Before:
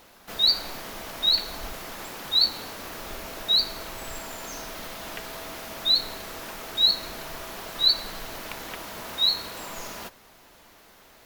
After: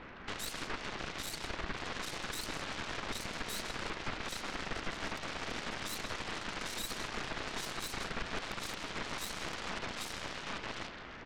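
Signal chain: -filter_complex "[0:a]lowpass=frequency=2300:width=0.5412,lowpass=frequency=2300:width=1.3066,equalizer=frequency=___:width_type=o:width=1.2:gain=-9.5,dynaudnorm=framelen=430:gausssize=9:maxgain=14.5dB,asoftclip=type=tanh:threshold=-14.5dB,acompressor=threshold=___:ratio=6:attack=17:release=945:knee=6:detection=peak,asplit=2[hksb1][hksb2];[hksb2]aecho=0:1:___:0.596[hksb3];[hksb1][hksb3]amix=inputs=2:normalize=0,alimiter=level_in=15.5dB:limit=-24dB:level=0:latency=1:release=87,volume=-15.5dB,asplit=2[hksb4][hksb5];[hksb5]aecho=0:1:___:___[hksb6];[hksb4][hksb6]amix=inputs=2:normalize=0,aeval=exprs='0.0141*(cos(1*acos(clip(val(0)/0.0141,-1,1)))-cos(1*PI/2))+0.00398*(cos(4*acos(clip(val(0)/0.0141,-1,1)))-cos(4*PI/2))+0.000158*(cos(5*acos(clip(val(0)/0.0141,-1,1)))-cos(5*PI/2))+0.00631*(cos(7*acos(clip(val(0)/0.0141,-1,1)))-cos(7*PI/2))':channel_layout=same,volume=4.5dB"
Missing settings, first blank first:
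690, -41dB, 795, 158, 0.266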